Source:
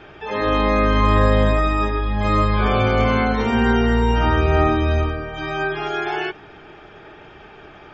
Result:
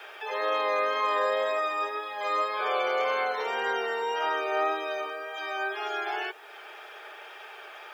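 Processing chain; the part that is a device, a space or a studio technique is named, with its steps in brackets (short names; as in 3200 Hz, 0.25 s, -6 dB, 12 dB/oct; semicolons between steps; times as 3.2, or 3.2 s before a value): noise-reduction cassette on a plain deck (mismatched tape noise reduction encoder only; wow and flutter 19 cents; white noise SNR 42 dB); steep high-pass 430 Hz 36 dB/oct; gain -6.5 dB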